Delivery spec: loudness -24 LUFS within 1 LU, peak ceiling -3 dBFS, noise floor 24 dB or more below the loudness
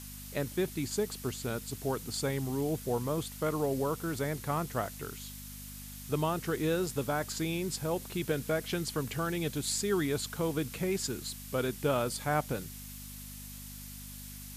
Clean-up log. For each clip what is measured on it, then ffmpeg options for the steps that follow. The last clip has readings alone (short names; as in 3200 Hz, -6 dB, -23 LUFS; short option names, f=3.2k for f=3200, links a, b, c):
hum 50 Hz; harmonics up to 250 Hz; hum level -46 dBFS; noise floor -45 dBFS; noise floor target -58 dBFS; loudness -33.5 LUFS; peak -16.0 dBFS; loudness target -24.0 LUFS
-> -af "bandreject=f=50:t=h:w=4,bandreject=f=100:t=h:w=4,bandreject=f=150:t=h:w=4,bandreject=f=200:t=h:w=4,bandreject=f=250:t=h:w=4"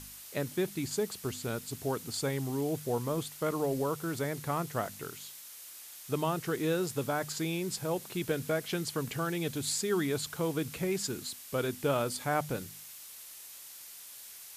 hum none; noise floor -49 dBFS; noise floor target -58 dBFS
-> -af "afftdn=nr=9:nf=-49"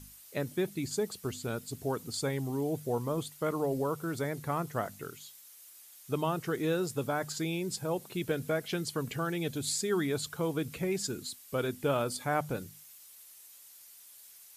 noise floor -54 dBFS; noise floor target -58 dBFS
-> -af "afftdn=nr=6:nf=-54"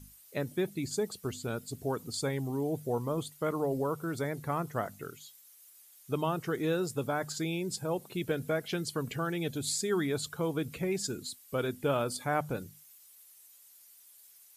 noise floor -58 dBFS; loudness -33.5 LUFS; peak -16.5 dBFS; loudness target -24.0 LUFS
-> -af "volume=9.5dB"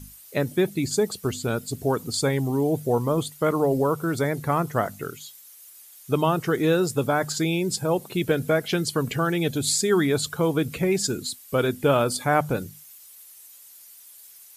loudness -24.0 LUFS; peak -7.0 dBFS; noise floor -48 dBFS